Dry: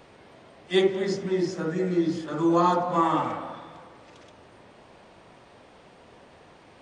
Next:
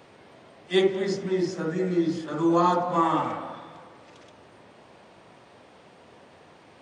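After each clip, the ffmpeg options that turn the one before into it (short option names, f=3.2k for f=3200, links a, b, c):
-af "highpass=83"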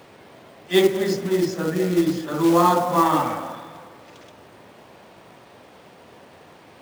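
-af "acrusher=bits=4:mode=log:mix=0:aa=0.000001,volume=4.5dB"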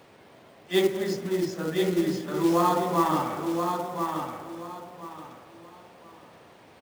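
-af "aecho=1:1:1027|2054|3081:0.531|0.138|0.0359,volume=-6dB"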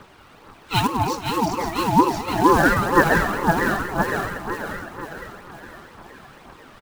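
-af "aecho=1:1:515:0.531,aphaser=in_gain=1:out_gain=1:delay=1.7:decay=0.5:speed=2:type=triangular,aeval=exprs='val(0)*sin(2*PI*600*n/s+600*0.2/4.4*sin(2*PI*4.4*n/s))':c=same,volume=7dB"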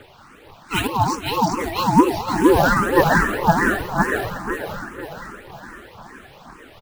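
-filter_complex "[0:a]asplit=2[a][b];[b]afreqshift=2.4[c];[a][c]amix=inputs=2:normalize=1,volume=4.5dB"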